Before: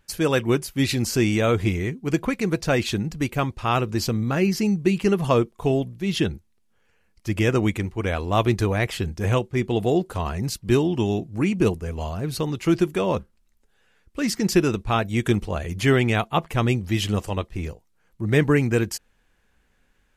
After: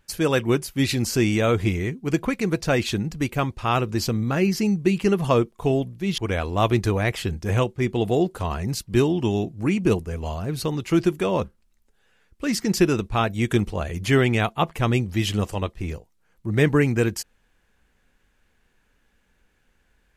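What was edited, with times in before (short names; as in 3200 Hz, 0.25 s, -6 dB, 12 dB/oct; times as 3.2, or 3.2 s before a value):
6.18–7.93 cut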